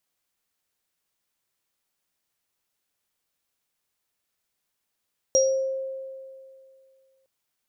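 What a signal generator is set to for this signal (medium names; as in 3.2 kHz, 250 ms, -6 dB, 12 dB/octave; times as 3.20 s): sine partials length 1.91 s, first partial 532 Hz, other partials 5.7 kHz, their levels 0 dB, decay 2.34 s, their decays 0.40 s, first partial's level -16.5 dB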